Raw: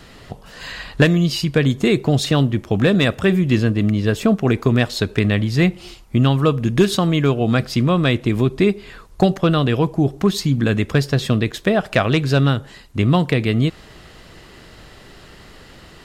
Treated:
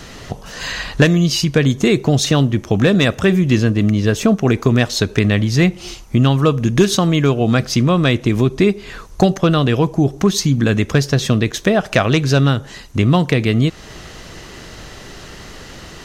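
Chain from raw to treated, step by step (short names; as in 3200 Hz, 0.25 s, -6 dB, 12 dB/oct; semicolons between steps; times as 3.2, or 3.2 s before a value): bell 6100 Hz +10.5 dB 0.26 oct; in parallel at +2 dB: compressor, threshold -26 dBFS, peak gain reduction 16.5 dB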